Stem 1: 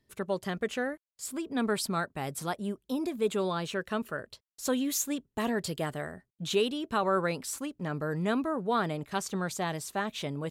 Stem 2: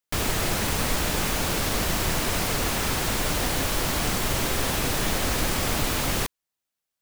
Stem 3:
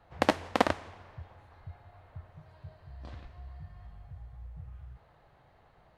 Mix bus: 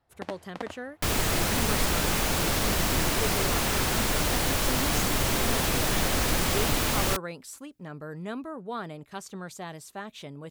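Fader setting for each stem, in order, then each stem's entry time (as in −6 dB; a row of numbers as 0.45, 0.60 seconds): −6.5, −0.5, −13.0 decibels; 0.00, 0.90, 0.00 seconds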